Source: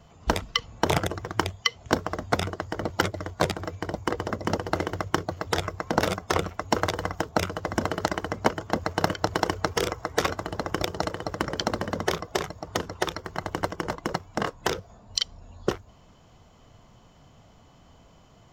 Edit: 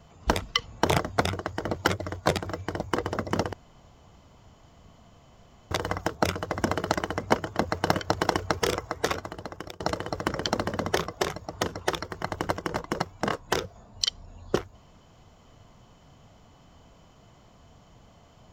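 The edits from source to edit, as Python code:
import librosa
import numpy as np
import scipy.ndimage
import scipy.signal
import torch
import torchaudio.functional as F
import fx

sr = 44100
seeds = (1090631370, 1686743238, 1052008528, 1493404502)

y = fx.edit(x, sr, fx.cut(start_s=0.99, length_s=1.14),
    fx.room_tone_fill(start_s=4.67, length_s=2.18),
    fx.fade_out_to(start_s=9.9, length_s=1.04, floor_db=-17.5), tone=tone)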